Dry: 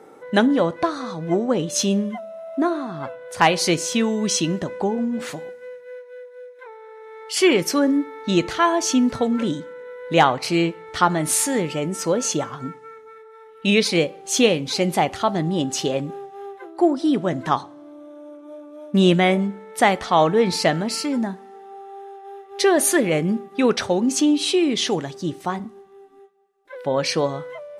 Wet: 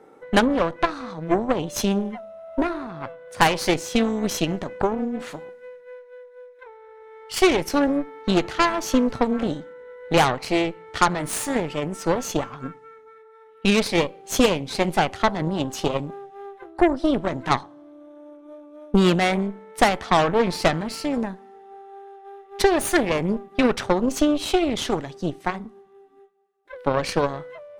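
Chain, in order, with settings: tone controls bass +1 dB, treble -5 dB; added harmonics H 8 -15 dB, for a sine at -2.5 dBFS; transient shaper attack +5 dB, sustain +1 dB; gain -5 dB

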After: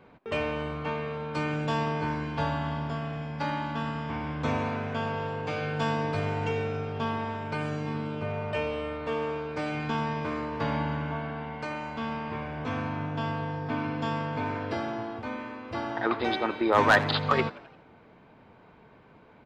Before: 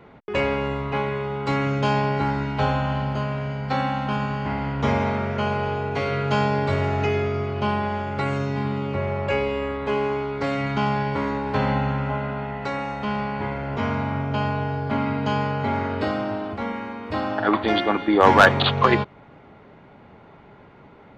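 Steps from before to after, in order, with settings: frequency-shifting echo 94 ms, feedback 54%, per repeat +88 Hz, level -19.5 dB; speed mistake 44.1 kHz file played as 48 kHz; gain -7 dB

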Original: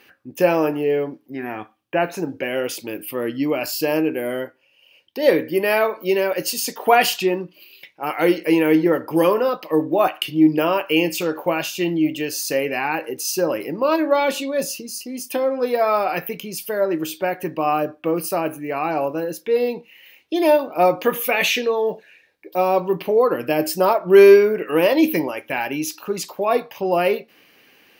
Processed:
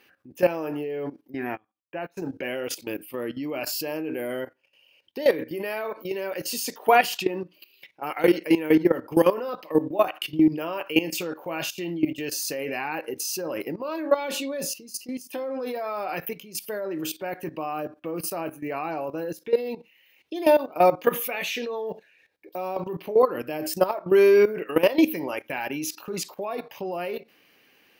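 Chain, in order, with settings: level quantiser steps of 15 dB; 1.57–2.22 upward expander 2.5:1, over -43 dBFS

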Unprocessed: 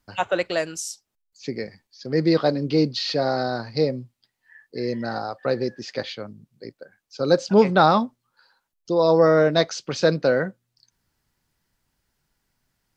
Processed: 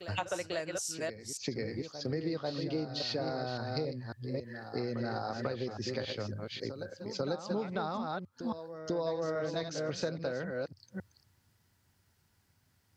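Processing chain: reverse delay 0.275 s, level -8 dB; HPF 73 Hz; bell 92 Hz +13.5 dB 0.61 oct; compressor 10:1, threshold -32 dBFS, peak gain reduction 22 dB; on a send: reverse echo 0.493 s -10 dB

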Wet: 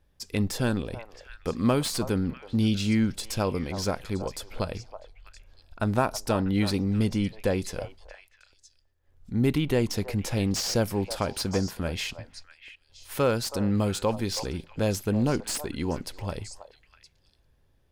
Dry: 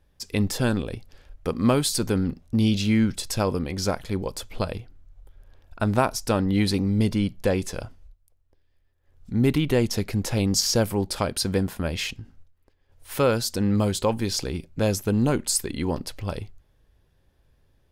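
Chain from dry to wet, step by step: delay with a stepping band-pass 0.323 s, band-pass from 780 Hz, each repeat 1.4 oct, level -8 dB; slew limiter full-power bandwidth 350 Hz; gain -3 dB

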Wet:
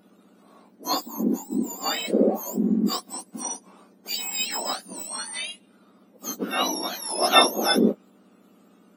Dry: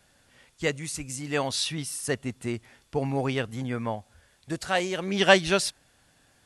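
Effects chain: spectrum mirrored in octaves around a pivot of 1700 Hz; varispeed -28%; gain +4.5 dB

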